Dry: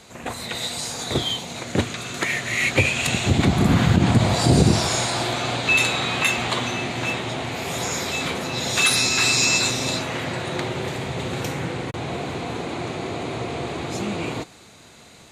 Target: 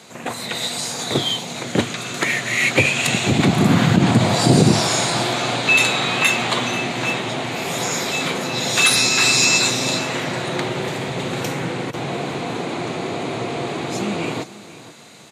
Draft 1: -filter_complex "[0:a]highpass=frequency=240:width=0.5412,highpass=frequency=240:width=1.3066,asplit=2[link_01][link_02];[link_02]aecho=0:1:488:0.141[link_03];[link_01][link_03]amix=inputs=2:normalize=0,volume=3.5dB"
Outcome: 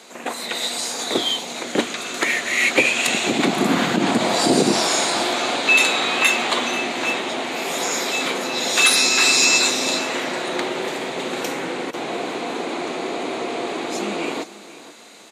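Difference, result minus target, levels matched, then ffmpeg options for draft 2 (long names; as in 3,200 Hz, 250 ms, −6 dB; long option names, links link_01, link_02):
125 Hz band −14.0 dB
-filter_complex "[0:a]highpass=frequency=120:width=0.5412,highpass=frequency=120:width=1.3066,asplit=2[link_01][link_02];[link_02]aecho=0:1:488:0.141[link_03];[link_01][link_03]amix=inputs=2:normalize=0,volume=3.5dB"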